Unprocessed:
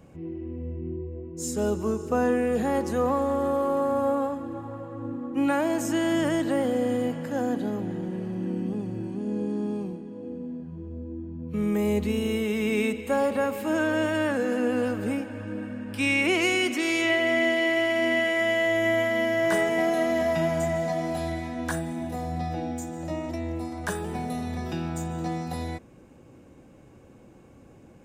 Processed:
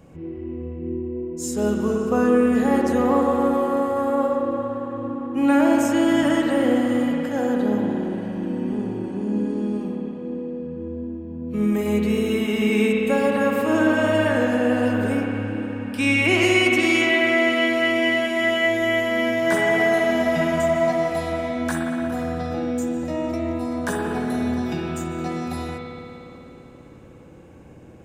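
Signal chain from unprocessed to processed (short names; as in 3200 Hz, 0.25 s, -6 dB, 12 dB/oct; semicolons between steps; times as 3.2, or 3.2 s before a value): spring tank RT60 3.1 s, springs 57 ms, chirp 65 ms, DRR -1 dB; gain +2.5 dB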